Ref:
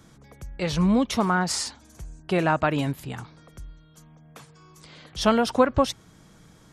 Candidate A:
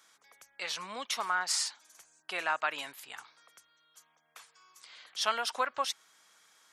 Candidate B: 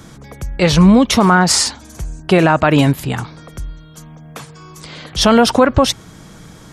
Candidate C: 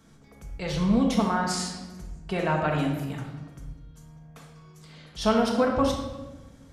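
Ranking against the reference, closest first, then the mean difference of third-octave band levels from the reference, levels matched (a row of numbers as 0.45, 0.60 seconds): B, C, A; 2.0, 5.0, 9.5 decibels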